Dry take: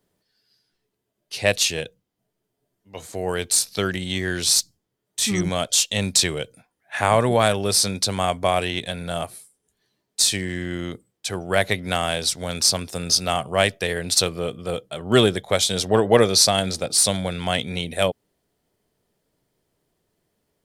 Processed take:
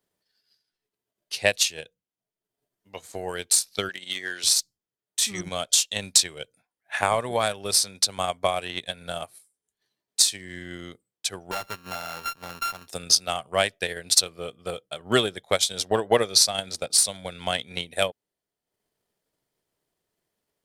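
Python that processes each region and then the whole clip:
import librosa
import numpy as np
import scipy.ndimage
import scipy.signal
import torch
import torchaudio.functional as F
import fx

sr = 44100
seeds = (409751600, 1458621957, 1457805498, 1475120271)

y = fx.chain(x, sr, fx.weighting(curve='A'),
    fx.overload_stage(gain_db=17.5), at=(3.89, 4.44))
y = fx.chain(y, sr, fx.sample_sort(block=32),
    fx.peak_eq(hz=8300.0, db=-7.0, octaves=0.36),
    fx.tube_stage(drive_db=22.0, bias=0.45), at=(11.51, 12.88))
y = fx.low_shelf(y, sr, hz=450.0, db=-8.5)
y = fx.transient(y, sr, attack_db=7, sustain_db=-7)
y = F.gain(torch.from_numpy(y), -5.0).numpy()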